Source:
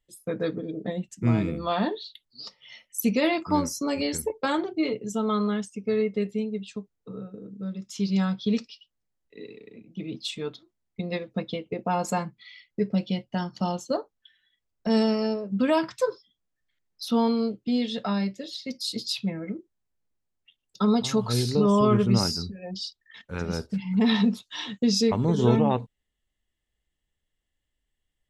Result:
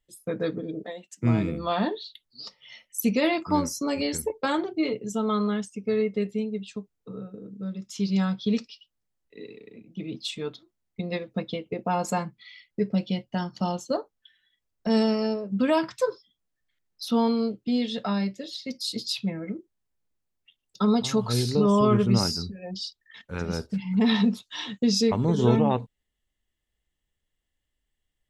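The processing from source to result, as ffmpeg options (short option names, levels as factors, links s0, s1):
-filter_complex "[0:a]asettb=1/sr,asplit=3[s0][s1][s2];[s0]atrim=end=0.834[s3];[s1]atrim=start=0.83:end=1.23,asetpts=PTS-STARTPTS,afade=t=in:d=0.004:c=qsin,afade=t=out:st=0.396:d=0.004:c=qsin,highpass=570[s4];[s2]atrim=start=1.226[s5];[s3][s4]acrossfade=d=0.004:c1=hsin:c2=qsin[s6];[s6][s5]acrossfade=d=0.004:c1=qsin:c2=hsin"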